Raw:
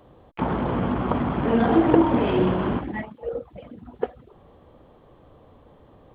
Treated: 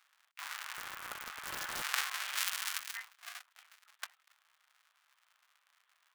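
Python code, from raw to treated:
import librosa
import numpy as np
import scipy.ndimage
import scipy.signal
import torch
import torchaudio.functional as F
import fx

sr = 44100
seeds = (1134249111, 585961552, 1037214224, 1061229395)

y = fx.cycle_switch(x, sr, every=2, mode='inverted')
y = scipy.signal.sosfilt(scipy.signal.butter(4, 1400.0, 'highpass', fs=sr, output='sos'), y)
y = fx.overflow_wrap(y, sr, gain_db=19.5, at=(0.76, 1.82))
y = fx.high_shelf(y, sr, hz=2900.0, db=10.5, at=(2.37, 2.95), fade=0.02)
y = y * librosa.db_to_amplitude(-8.5)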